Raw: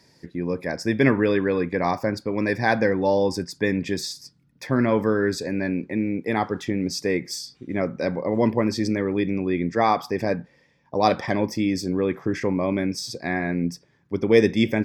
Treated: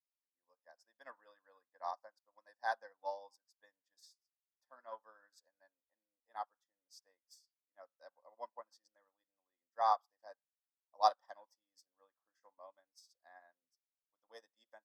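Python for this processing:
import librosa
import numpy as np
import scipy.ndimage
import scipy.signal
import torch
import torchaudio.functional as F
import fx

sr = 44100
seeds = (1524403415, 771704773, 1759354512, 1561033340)

y = scipy.signal.sosfilt(scipy.signal.butter(4, 500.0, 'highpass', fs=sr, output='sos'), x)
y = fx.fixed_phaser(y, sr, hz=960.0, stages=4)
y = fx.upward_expand(y, sr, threshold_db=-45.0, expansion=2.5)
y = F.gain(torch.from_numpy(y), -5.5).numpy()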